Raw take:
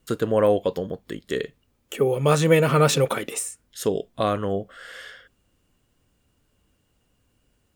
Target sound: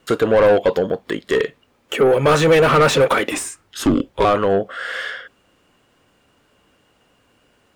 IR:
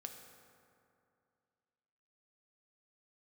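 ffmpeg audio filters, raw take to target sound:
-filter_complex "[0:a]asplit=2[a][b];[b]highpass=f=720:p=1,volume=24dB,asoftclip=type=tanh:threshold=-4.5dB[c];[a][c]amix=inputs=2:normalize=0,lowpass=f=1.8k:p=1,volume=-6dB,asettb=1/sr,asplit=3[d][e][f];[d]atrim=end=3.314[g];[e]atrim=start=3.31:end=4.25,asetpts=PTS-STARTPTS,afade=t=in:d=0.004:c=qsin,afade=t=out:st=0.936:d=0.004:c=qsin,afreqshift=-150[h];[f]atrim=start=4.246[i];[g][h]acrossfade=d=0.004:c1=hsin:c2=qsin[j];[j][i]acrossfade=d=0.004:c1=qsin:c2=hsin"

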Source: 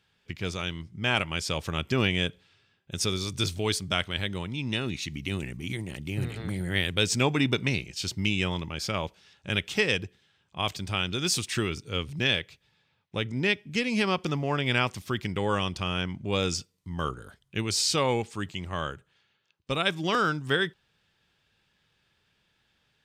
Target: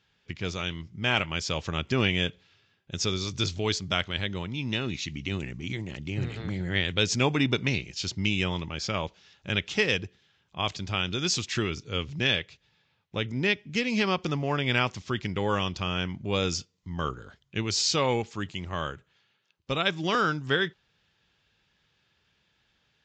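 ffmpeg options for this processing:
-ar 16000 -c:a libvorbis -b:a 64k

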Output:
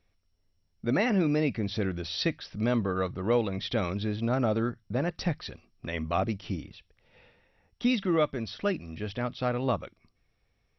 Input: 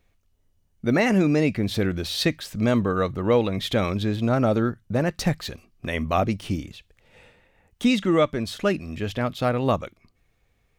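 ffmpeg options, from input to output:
-af "volume=-6dB" -ar 22050 -c:a mp2 -b:a 48k

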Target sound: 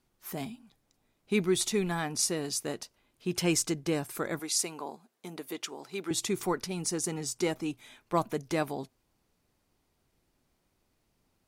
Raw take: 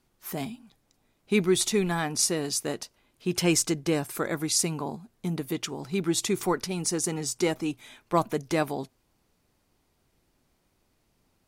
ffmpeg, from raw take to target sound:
-filter_complex "[0:a]asettb=1/sr,asplit=3[a][b][c];[a]atrim=end=4.394[d];[b]atrim=start=4.39:end=6.11,asetpts=PTS-STARTPTS,afade=t=in:d=0.004:c=qsin,afade=t=out:st=1.716:d=0.004:c=qsin,highpass=370[e];[c]atrim=start=6.106[f];[d][e]acrossfade=d=0.004:c1=hsin:c2=qsin[g];[g][f]acrossfade=d=0.004:c1=qsin:c2=hsin,volume=-4dB"

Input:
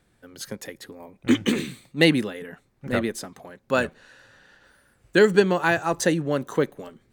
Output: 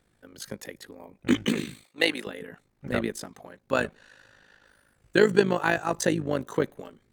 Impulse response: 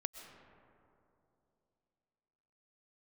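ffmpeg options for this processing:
-filter_complex "[0:a]asettb=1/sr,asplit=3[a][b][c];[a]atrim=end=1.844[d];[b]atrim=start=1.84:end=2.27,asetpts=PTS-STARTPTS,afade=t=in:d=0.004:c=qsin,afade=t=out:st=0.426:d=0.004:c=qsin,highpass=510[e];[c]atrim=start=2.266[f];[d][e]acrossfade=d=0.004:c1=hsin:c2=qsin[g];[g][f]acrossfade=d=0.004:c1=qsin:c2=hsin,tremolo=f=52:d=0.75"

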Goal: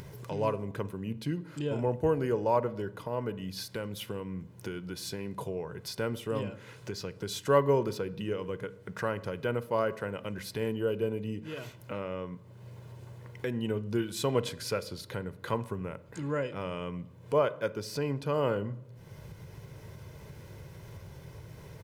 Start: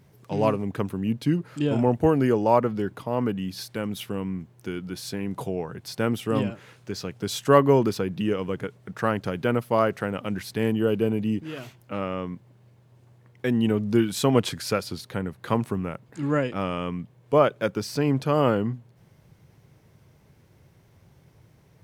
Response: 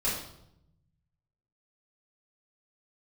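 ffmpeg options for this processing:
-filter_complex "[0:a]aecho=1:1:2:0.41,acompressor=mode=upward:threshold=-23dB:ratio=2.5,asplit=2[a][b];[1:a]atrim=start_sample=2205,highshelf=f=4.9k:g=-10.5,adelay=11[c];[b][c]afir=irnorm=-1:irlink=0,volume=-22dB[d];[a][d]amix=inputs=2:normalize=0,volume=-8.5dB"

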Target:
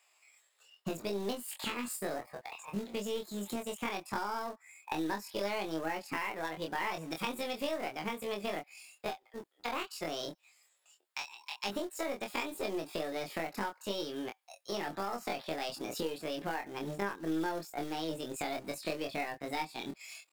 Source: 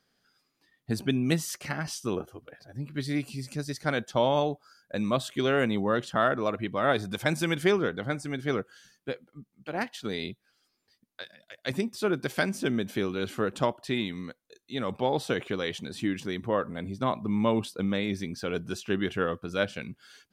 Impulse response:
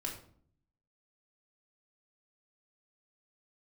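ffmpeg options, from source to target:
-filter_complex "[0:a]highshelf=f=8.8k:g=-6,bandreject=f=3.9k:w=5.2,aeval=exprs='0.299*(cos(1*acos(clip(val(0)/0.299,-1,1)))-cos(1*PI/2))+0.0133*(cos(8*acos(clip(val(0)/0.299,-1,1)))-cos(8*PI/2))':c=same,acrossover=split=410|1100|2200[a][b][c][d];[a]aeval=exprs='sgn(val(0))*max(abs(val(0))-0.00376,0)':c=same[e];[e][b][c][d]amix=inputs=4:normalize=0,acrusher=bits=4:mode=log:mix=0:aa=0.000001,asetrate=68011,aresample=44100,atempo=0.64842,acompressor=threshold=-41dB:ratio=6,asplit=2[f][g];[g]adelay=25,volume=-4.5dB[h];[f][h]amix=inputs=2:normalize=0,volume=5.5dB"

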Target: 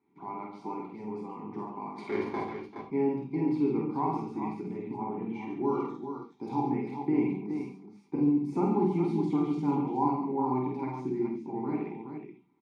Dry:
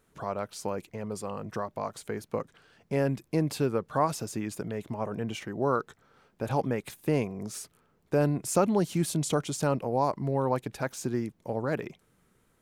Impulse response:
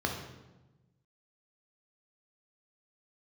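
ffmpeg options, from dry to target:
-filter_complex "[0:a]asplit=3[a][b][c];[a]bandpass=f=300:t=q:w=8,volume=0dB[d];[b]bandpass=f=870:t=q:w=8,volume=-6dB[e];[c]bandpass=f=2.24k:t=q:w=8,volume=-9dB[f];[d][e][f]amix=inputs=3:normalize=0,bandreject=f=50:t=h:w=6,bandreject=f=100:t=h:w=6,bandreject=f=150:t=h:w=6,bandreject=f=200:t=h:w=6,bandreject=f=250:t=h:w=6,aecho=1:1:5.1:0.48,asettb=1/sr,asplit=3[g][h][i];[g]atrim=end=1.984[j];[h]atrim=start=1.98:end=2.4,asetpts=PTS-STARTPTS,afade=t=in:d=0.004:c=qsin,afade=t=out:st=0.416:d=0.004:c=qsin,asplit=2[k][l];[l]highpass=f=720:p=1,volume=25dB,asoftclip=type=tanh:threshold=-32dB[m];[k][m]amix=inputs=2:normalize=0,lowpass=f=3.3k:p=1,volume=-6dB[n];[i]atrim=start=2.396[o];[j][n]acrossfade=d=0.004:c1=hsin:c2=qsin[p];[p][o]acrossfade=d=0.004:c1=qsin:c2=hsin,asettb=1/sr,asplit=3[q][r][s];[q]atrim=end=5.594[t];[r]atrim=start=5.59:end=6.55,asetpts=PTS-STARTPTS,afade=t=in:d=0.004:c=qsin,afade=t=out:st=0.956:d=0.004:c=qsin,highshelf=f=3.4k:t=q:w=1.5:g=12.5[u];[s]atrim=start=6.546[v];[t][u]acrossfade=d=0.004:c1=hsin:c2=qsin[w];[w][v]acrossfade=d=0.004:c1=qsin:c2=hsin,asettb=1/sr,asplit=3[x][y][z];[x]atrim=end=8.154[aa];[y]atrim=start=8.15:end=8.55,asetpts=PTS-STARTPTS,afade=t=in:d=0.004:c=qsin,afade=t=out:st=0.396:d=0.004:c=qsin,acrossover=split=310|3000[ab][ac][ad];[ac]acompressor=threshold=-53dB:ratio=6[ae];[ab][ae][ad]amix=inputs=3:normalize=0[af];[z]atrim=start=8.546[ag];[aa][af]acrossfade=d=0.004:c1=hsin:c2=qsin[ah];[ah][ag]acrossfade=d=0.004:c1=qsin:c2=hsin,aecho=1:1:48|140|390|420:0.708|0.398|0.141|0.447[ai];[1:a]atrim=start_sample=2205,atrim=end_sample=4410[aj];[ai][aj]afir=irnorm=-1:irlink=0"

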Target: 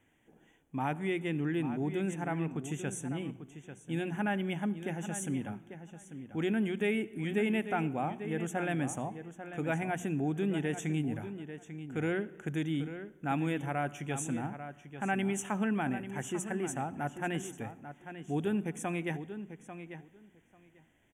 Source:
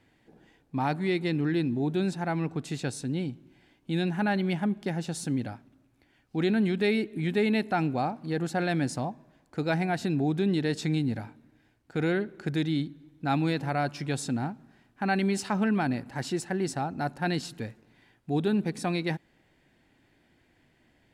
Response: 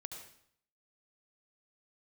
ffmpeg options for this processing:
-filter_complex "[0:a]asuperstop=centerf=4500:order=12:qfactor=1.9,highshelf=f=3.6k:g=6,bandreject=f=60:t=h:w=6,bandreject=f=120:t=h:w=6,bandreject=f=180:t=h:w=6,asplit=2[a][b];[b]adelay=843,lowpass=f=4k:p=1,volume=-10.5dB,asplit=2[c][d];[d]adelay=843,lowpass=f=4k:p=1,volume=0.15[e];[a][c][e]amix=inputs=3:normalize=0,asplit=2[f][g];[1:a]atrim=start_sample=2205[h];[g][h]afir=irnorm=-1:irlink=0,volume=-12.5dB[i];[f][i]amix=inputs=2:normalize=0,volume=-6.5dB"

